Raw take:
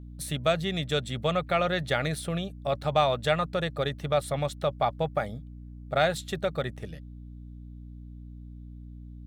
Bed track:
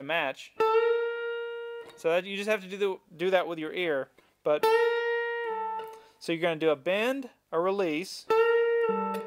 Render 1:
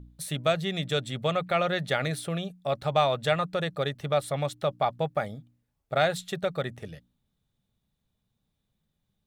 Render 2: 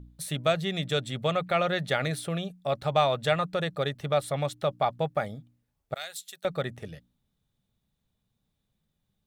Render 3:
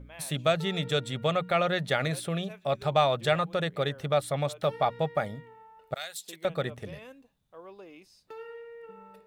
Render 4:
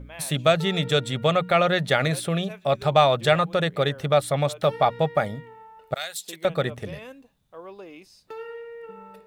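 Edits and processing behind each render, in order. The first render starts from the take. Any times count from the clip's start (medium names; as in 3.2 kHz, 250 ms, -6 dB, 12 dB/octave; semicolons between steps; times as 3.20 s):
de-hum 60 Hz, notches 5
5.94–6.45 s: differentiator
add bed track -20 dB
trim +6 dB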